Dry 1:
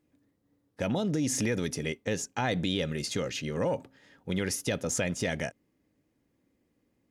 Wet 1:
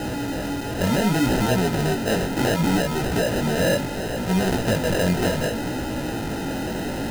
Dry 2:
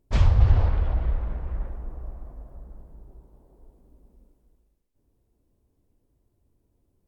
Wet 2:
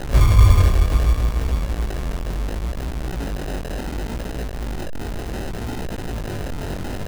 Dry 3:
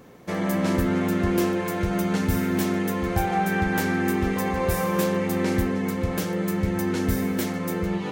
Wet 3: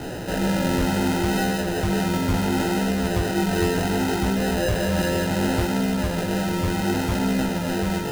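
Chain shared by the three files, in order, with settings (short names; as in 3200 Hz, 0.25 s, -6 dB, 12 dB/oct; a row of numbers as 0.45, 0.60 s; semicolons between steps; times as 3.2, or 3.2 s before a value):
zero-crossing step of -25.5 dBFS; sample-and-hold 39×; chorus 0.68 Hz, delay 15.5 ms, depth 7.1 ms; match loudness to -23 LUFS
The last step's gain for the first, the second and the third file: +7.5, +8.0, +2.0 dB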